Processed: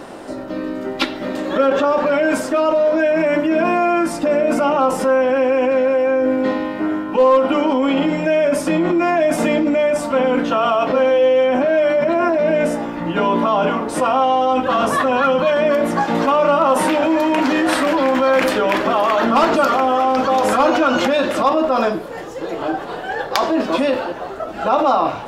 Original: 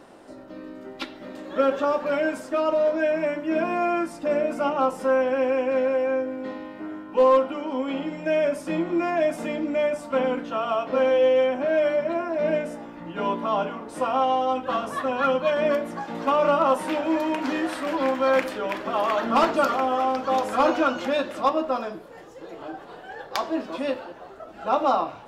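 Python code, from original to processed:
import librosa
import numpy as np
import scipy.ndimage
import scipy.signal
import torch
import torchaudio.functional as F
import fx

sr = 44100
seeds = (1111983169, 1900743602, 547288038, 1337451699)

p1 = fx.high_shelf(x, sr, hz=7800.0, db=-6.5, at=(1.67, 2.25))
p2 = fx.over_compress(p1, sr, threshold_db=-30.0, ratio=-1.0)
p3 = p1 + F.gain(torch.from_numpy(p2), 2.0).numpy()
y = F.gain(torch.from_numpy(p3), 4.0).numpy()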